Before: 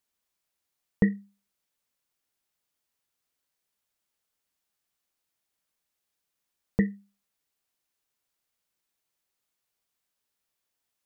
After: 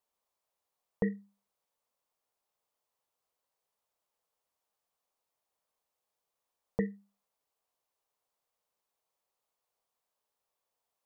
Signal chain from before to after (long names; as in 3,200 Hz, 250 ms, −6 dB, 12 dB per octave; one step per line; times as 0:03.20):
flat-topped bell 710 Hz +10.5 dB
brickwall limiter −11 dBFS, peak gain reduction 6 dB
level −6 dB